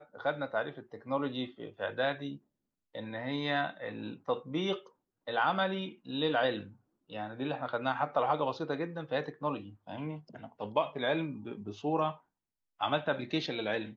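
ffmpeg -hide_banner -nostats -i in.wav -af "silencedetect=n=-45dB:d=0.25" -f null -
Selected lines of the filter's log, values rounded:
silence_start: 2.36
silence_end: 2.95 | silence_duration: 0.59
silence_start: 4.86
silence_end: 5.27 | silence_duration: 0.41
silence_start: 6.70
silence_end: 7.10 | silence_duration: 0.40
silence_start: 12.16
silence_end: 12.80 | silence_duration: 0.65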